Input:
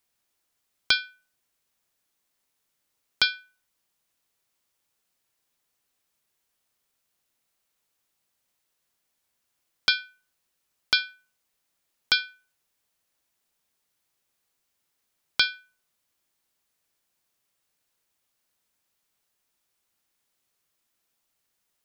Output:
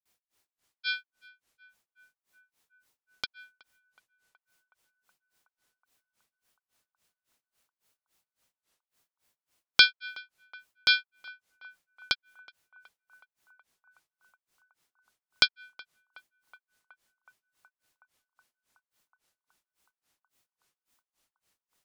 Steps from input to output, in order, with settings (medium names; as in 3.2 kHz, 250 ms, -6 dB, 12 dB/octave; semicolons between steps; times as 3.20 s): granulator 212 ms, grains 3.6 per s, pitch spread up and down by 0 st; band-passed feedback delay 371 ms, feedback 84%, band-pass 990 Hz, level -21 dB; trim +5 dB